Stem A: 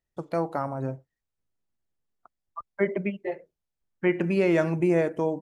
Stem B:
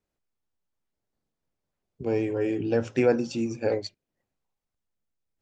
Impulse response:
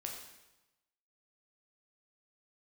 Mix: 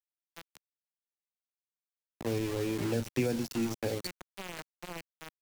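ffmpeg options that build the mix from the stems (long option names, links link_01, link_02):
-filter_complex "[0:a]highshelf=frequency=2300:gain=3.5,volume=-16dB[link_01];[1:a]adelay=200,volume=-0.5dB[link_02];[link_01][link_02]amix=inputs=2:normalize=0,aeval=exprs='val(0)*gte(abs(val(0)),0.0266)':channel_layout=same,acrossover=split=230|3000[link_03][link_04][link_05];[link_04]acompressor=threshold=-33dB:ratio=6[link_06];[link_03][link_06][link_05]amix=inputs=3:normalize=0"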